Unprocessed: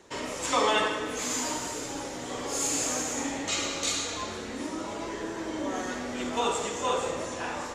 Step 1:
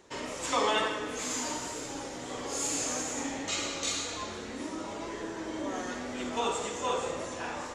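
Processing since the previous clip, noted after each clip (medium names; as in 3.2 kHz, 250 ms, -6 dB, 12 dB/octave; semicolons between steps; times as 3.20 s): low-pass 11 kHz 12 dB/octave; wow and flutter 23 cents; trim -3 dB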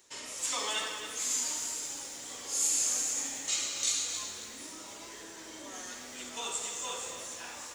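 pre-emphasis filter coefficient 0.9; bit-crushed delay 270 ms, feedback 35%, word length 9-bit, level -9 dB; trim +5.5 dB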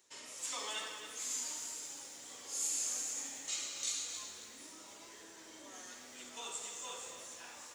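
high-pass 45 Hz; bass shelf 120 Hz -5 dB; trim -7.5 dB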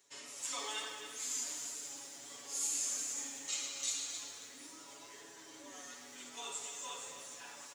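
comb 7.1 ms, depth 83%; trim -2 dB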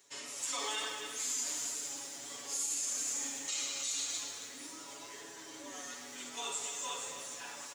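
peak limiter -31.5 dBFS, peak gain reduction 7.5 dB; trim +5 dB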